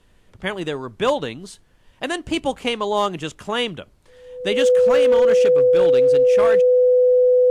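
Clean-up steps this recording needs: clip repair -10.5 dBFS; band-stop 500 Hz, Q 30; expander -45 dBFS, range -21 dB

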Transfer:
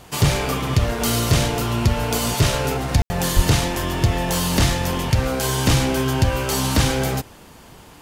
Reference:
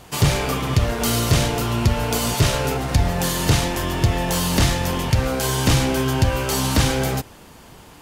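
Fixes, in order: de-plosive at 3.35 s; room tone fill 3.02–3.10 s

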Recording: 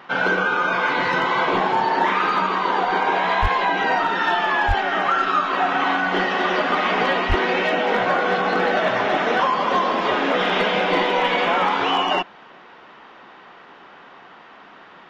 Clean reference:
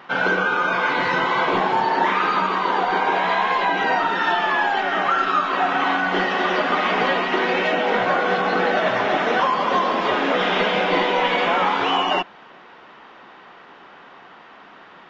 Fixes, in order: clip repair -10 dBFS; de-plosive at 3.41/4.67/7.28 s

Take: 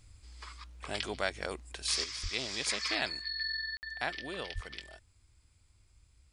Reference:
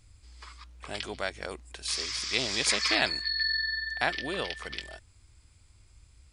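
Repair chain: 2.22–2.34 s: high-pass 140 Hz 24 dB/octave; 4.54–4.66 s: high-pass 140 Hz 24 dB/octave; interpolate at 3.77 s, 59 ms; trim 0 dB, from 2.04 s +7 dB

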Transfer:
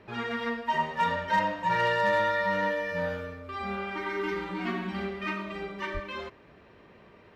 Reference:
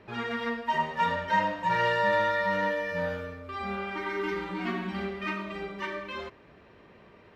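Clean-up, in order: clip repair -17.5 dBFS; de-plosive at 5.93 s

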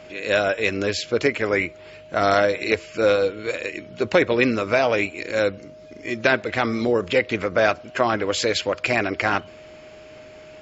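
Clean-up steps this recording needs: band-stop 620 Hz, Q 30

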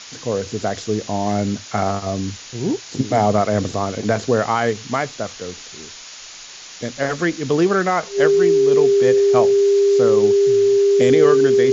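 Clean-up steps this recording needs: band-stop 400 Hz, Q 30; noise print and reduce 25 dB

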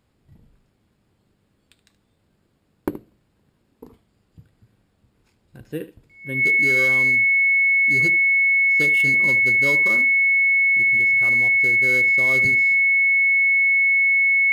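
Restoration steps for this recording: clip repair -13.5 dBFS; band-stop 2.2 kHz, Q 30; inverse comb 75 ms -15 dB

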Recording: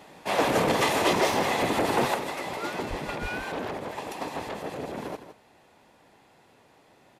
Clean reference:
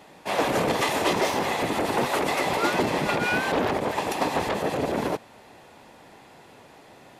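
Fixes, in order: 2.89–3.01 s: high-pass 140 Hz 24 dB/octave; 3.21–3.33 s: high-pass 140 Hz 24 dB/octave; inverse comb 161 ms -11 dB; trim 0 dB, from 2.14 s +9 dB

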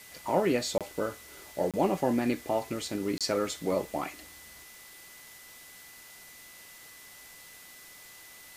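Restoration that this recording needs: band-stop 2 kHz, Q 30; interpolate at 0.78/1.71/3.18 s, 27 ms; noise print and reduce 25 dB

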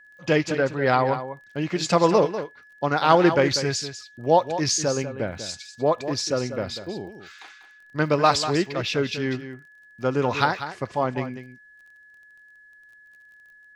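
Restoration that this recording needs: de-click; band-stop 1.7 kHz, Q 30; inverse comb 194 ms -11 dB

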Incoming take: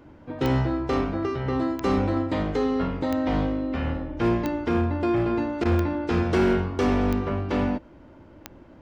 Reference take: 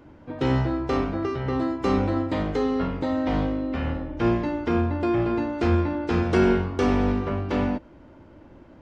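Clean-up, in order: clip repair -16 dBFS; de-click; interpolate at 5.64 s, 12 ms

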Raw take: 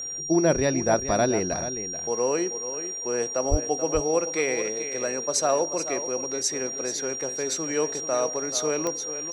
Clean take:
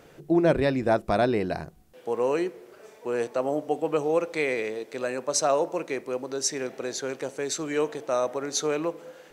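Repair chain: de-click; band-stop 5.7 kHz, Q 30; de-plosive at 3.50 s; inverse comb 433 ms -11 dB

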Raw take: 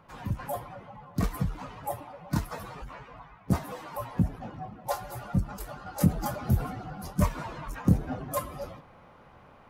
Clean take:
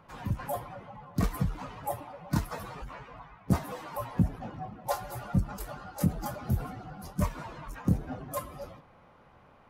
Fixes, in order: trim 0 dB, from 5.86 s -4 dB

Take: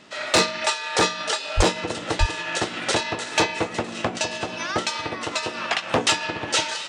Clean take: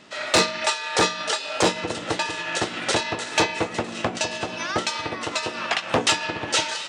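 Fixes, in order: 1.56–1.68 s: high-pass 140 Hz 24 dB/octave; 2.19–2.31 s: high-pass 140 Hz 24 dB/octave

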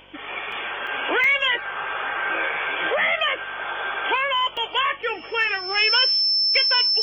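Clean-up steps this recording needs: de-hum 48.3 Hz, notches 12; band-stop 5.3 kHz, Q 30; interpolate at 0.52/0.87/1.24/4.57 s, 2.8 ms

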